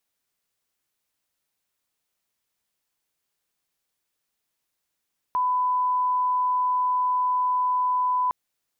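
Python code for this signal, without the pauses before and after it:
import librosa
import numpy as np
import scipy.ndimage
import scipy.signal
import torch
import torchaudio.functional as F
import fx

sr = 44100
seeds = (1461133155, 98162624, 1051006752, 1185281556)

y = fx.lineup_tone(sr, length_s=2.96, level_db=-20.0)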